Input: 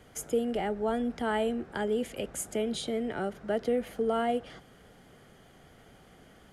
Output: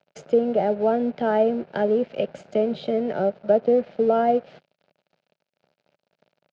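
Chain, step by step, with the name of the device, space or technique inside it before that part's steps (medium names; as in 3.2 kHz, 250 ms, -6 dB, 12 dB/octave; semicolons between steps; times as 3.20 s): low-pass that closes with the level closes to 1.8 kHz, closed at -27 dBFS; 3.13–3.79 s: peaking EQ 2.2 kHz -5 dB 0.92 oct; blown loudspeaker (crossover distortion -49 dBFS; cabinet simulation 160–4500 Hz, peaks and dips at 160 Hz +6 dB, 300 Hz -6 dB, 590 Hz +9 dB, 1.1 kHz -10 dB, 1.9 kHz -7 dB, 3.4 kHz -5 dB); trim +8.5 dB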